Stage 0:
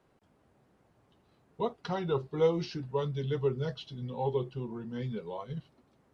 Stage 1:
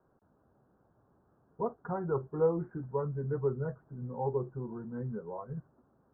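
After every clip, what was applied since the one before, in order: steep low-pass 1.6 kHz 72 dB/octave; trim -1.5 dB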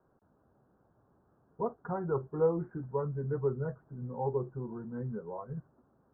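no audible change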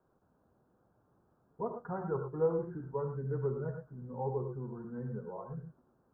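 gated-style reverb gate 130 ms rising, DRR 5 dB; trim -3.5 dB

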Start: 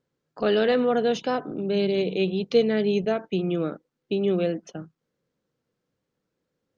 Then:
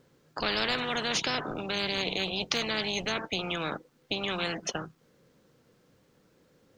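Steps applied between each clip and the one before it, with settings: spectrum-flattening compressor 4:1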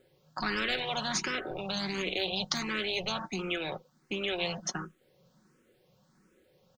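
comb 5.4 ms, depth 46%; barber-pole phaser +1.4 Hz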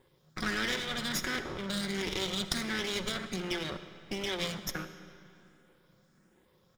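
comb filter that takes the minimum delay 0.56 ms; reverberation RT60 2.8 s, pre-delay 20 ms, DRR 11 dB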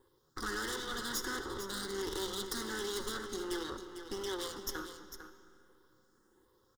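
wavefolder -26 dBFS; static phaser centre 640 Hz, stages 6; delay 450 ms -10 dB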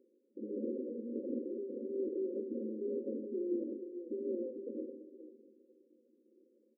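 decimation with a swept rate 25×, swing 160% 1.7 Hz; FFT band-pass 210–560 Hz; band-stop 430 Hz, Q 12; trim +4 dB

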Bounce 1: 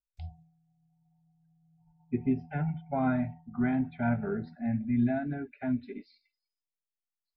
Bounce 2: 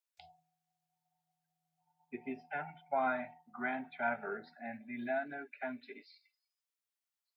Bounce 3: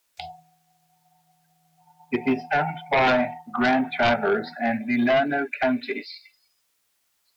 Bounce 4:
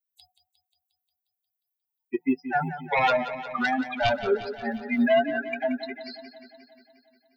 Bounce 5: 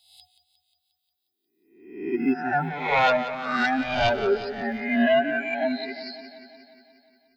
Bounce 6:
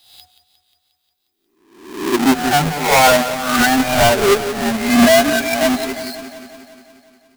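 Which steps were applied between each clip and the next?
high-pass 710 Hz 12 dB/octave; trim +2.5 dB
dynamic bell 1.8 kHz, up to -5 dB, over -46 dBFS, Q 0.78; sine folder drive 10 dB, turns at -23 dBFS; trim +7.5 dB
expander on every frequency bin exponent 3; modulated delay 178 ms, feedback 65%, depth 52 cents, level -12 dB; trim +2.5 dB
reverse spectral sustain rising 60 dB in 0.70 s
square wave that keeps the level; trim +6 dB

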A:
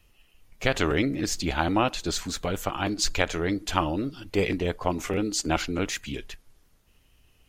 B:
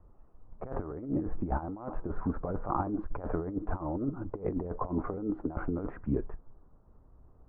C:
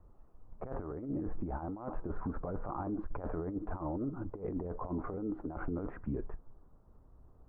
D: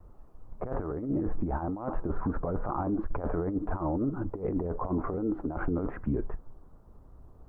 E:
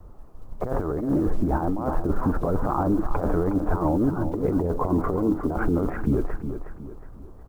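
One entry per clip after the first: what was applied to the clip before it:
steep low-pass 1.2 kHz 36 dB/octave; compressor with a negative ratio -31 dBFS, ratio -0.5
peak limiter -27 dBFS, peak gain reduction 10 dB; trim -1.5 dB
vibrato 2.7 Hz 54 cents; trim +7 dB
block-companded coder 7-bit; on a send: feedback delay 364 ms, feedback 39%, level -9.5 dB; on the sum: trim +7 dB

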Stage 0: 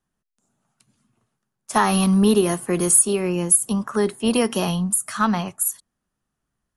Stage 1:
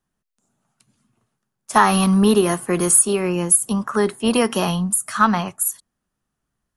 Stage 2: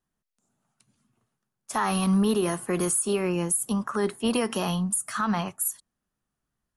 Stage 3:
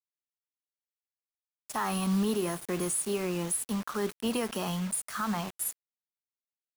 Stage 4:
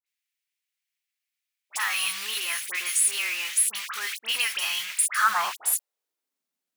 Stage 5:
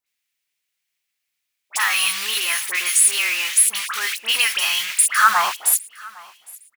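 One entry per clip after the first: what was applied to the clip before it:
dynamic bell 1.3 kHz, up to +5 dB, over -35 dBFS, Q 0.9; trim +1 dB
peak limiter -11 dBFS, peak gain reduction 9.5 dB; wow and flutter 22 cents; trim -5 dB
bit crusher 6-bit; trim -5.5 dB
phase dispersion highs, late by 65 ms, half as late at 1.8 kHz; high-pass sweep 2.2 kHz -> 210 Hz, 5.03–6.45 s; trim +9 dB
feedback delay 809 ms, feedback 28%, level -23 dB; trim +7.5 dB

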